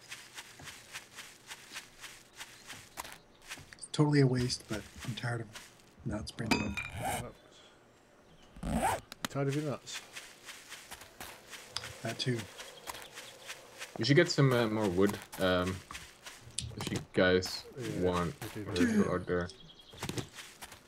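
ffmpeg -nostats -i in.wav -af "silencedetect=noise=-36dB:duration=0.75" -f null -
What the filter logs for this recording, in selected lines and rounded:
silence_start: 7.25
silence_end: 8.63 | silence_duration: 1.38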